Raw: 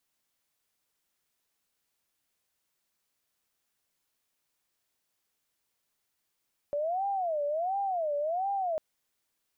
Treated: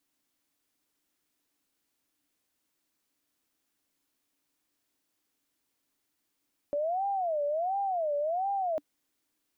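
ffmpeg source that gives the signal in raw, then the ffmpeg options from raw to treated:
-f lavfi -i "aevalsrc='0.0422*sin(2*PI*(688*t-111/(2*PI*1.4)*sin(2*PI*1.4*t)))':d=2.05:s=44100"
-af "equalizer=f=290:w=3.3:g=14"

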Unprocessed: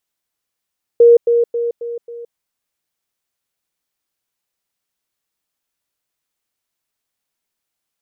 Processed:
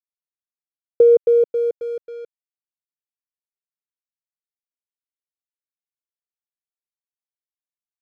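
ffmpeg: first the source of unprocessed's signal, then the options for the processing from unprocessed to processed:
-f lavfi -i "aevalsrc='pow(10,(-4-6*floor(t/0.27))/20)*sin(2*PI*471*t)*clip(min(mod(t,0.27),0.17-mod(t,0.27))/0.005,0,1)':d=1.35:s=44100"
-af "acompressor=threshold=-9dB:ratio=6,aeval=exprs='sgn(val(0))*max(abs(val(0))-0.00562,0)':c=same,bass=f=250:g=4,treble=f=4k:g=-8"

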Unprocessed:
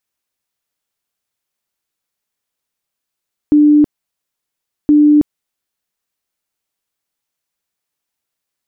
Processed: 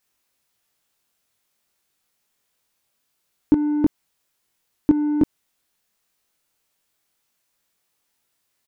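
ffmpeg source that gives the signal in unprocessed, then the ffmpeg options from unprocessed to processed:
-f lavfi -i "aevalsrc='0.562*sin(2*PI*297*mod(t,1.37))*lt(mod(t,1.37),96/297)':d=2.74:s=44100"
-filter_complex "[0:a]alimiter=limit=-10dB:level=0:latency=1:release=116,asplit=2[a][b];[b]asoftclip=type=tanh:threshold=-15dB,volume=-3.5dB[c];[a][c]amix=inputs=2:normalize=0,asplit=2[d][e];[e]adelay=22,volume=-2dB[f];[d][f]amix=inputs=2:normalize=0"

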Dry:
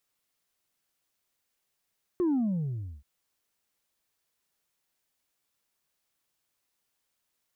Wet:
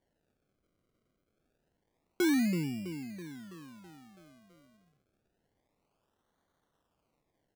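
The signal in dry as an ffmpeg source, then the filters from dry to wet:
-f lavfi -i "aevalsrc='0.0668*clip((0.83-t)/0.71,0,1)*tanh(1.19*sin(2*PI*370*0.83/log(65/370)*(exp(log(65/370)*t/0.83)-1)))/tanh(1.19)':d=0.83:s=44100"
-filter_complex "[0:a]highpass=f=170:w=0.5412,highpass=f=170:w=1.3066,asplit=2[a][b];[b]aecho=0:1:328|656|984|1312|1640|1968|2296:0.316|0.187|0.11|0.0649|0.0383|0.0226|0.0133[c];[a][c]amix=inputs=2:normalize=0,acrusher=samples=34:mix=1:aa=0.000001:lfo=1:lforange=34:lforate=0.27"

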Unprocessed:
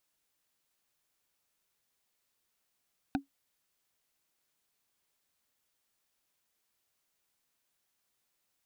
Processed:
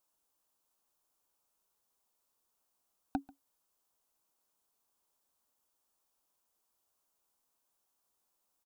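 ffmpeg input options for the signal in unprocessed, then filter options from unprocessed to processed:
-f lavfi -i "aevalsrc='0.0708*pow(10,-3*t/0.13)*sin(2*PI*277*t)+0.0501*pow(10,-3*t/0.038)*sin(2*PI*763.7*t)+0.0355*pow(10,-3*t/0.017)*sin(2*PI*1496.9*t)+0.0251*pow(10,-3*t/0.009)*sin(2*PI*2474.4*t)+0.0178*pow(10,-3*t/0.006)*sin(2*PI*3695.2*t)':d=0.45:s=44100"
-af "equalizer=f=125:t=o:w=1:g=-8,equalizer=f=1k:t=o:w=1:g=6,equalizer=f=2k:t=o:w=1:g=-11,equalizer=f=4k:t=o:w=1:g=-4,aecho=1:1:139:0.075"

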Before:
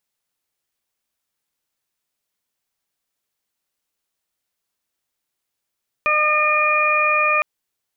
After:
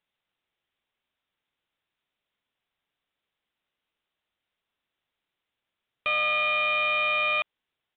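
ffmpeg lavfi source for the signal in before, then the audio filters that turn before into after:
-f lavfi -i "aevalsrc='0.0668*sin(2*PI*607*t)+0.119*sin(2*PI*1214*t)+0.0398*sin(2*PI*1821*t)+0.133*sin(2*PI*2428*t)':d=1.36:s=44100"
-af "aemphasis=mode=production:type=50fm,aresample=8000,asoftclip=type=tanh:threshold=-23dB,aresample=44100"

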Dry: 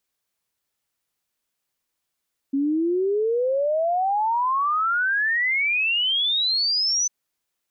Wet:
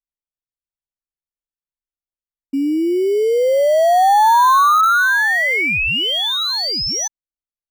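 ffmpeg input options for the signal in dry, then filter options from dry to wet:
-f lavfi -i "aevalsrc='0.112*clip(min(t,4.55-t)/0.01,0,1)*sin(2*PI*270*4.55/log(6100/270)*(exp(log(6100/270)*t/4.55)-1))':d=4.55:s=44100"
-filter_complex "[0:a]anlmdn=0.631,equalizer=f=1k:w=0.59:g=10,asplit=2[a][b];[b]acrusher=samples=17:mix=1:aa=0.000001,volume=-11dB[c];[a][c]amix=inputs=2:normalize=0"

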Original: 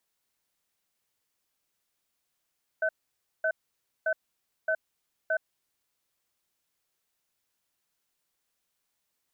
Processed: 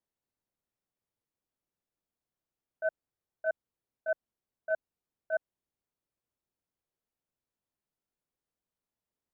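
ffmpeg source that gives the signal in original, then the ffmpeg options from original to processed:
-f lavfi -i "aevalsrc='0.0473*(sin(2*PI*639*t)+sin(2*PI*1520*t))*clip(min(mod(t,0.62),0.07-mod(t,0.62))/0.005,0,1)':d=3.08:s=44100"
-filter_complex "[0:a]agate=range=-17dB:threshold=-26dB:ratio=16:detection=peak,tiltshelf=f=1.1k:g=8.5,asplit=2[a][b];[b]alimiter=level_in=10.5dB:limit=-24dB:level=0:latency=1,volume=-10.5dB,volume=1.5dB[c];[a][c]amix=inputs=2:normalize=0"

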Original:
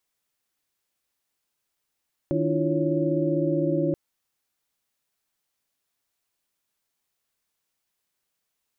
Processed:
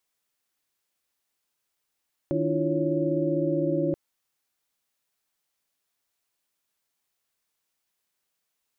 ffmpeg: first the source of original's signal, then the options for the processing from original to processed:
-f lavfi -i "aevalsrc='0.0422*(sin(2*PI*155.56*t)+sin(2*PI*293.66*t)+sin(2*PI*329.63*t)+sin(2*PI*349.23*t)+sin(2*PI*554.37*t))':d=1.63:s=44100"
-af "lowshelf=f=260:g=-3.5"

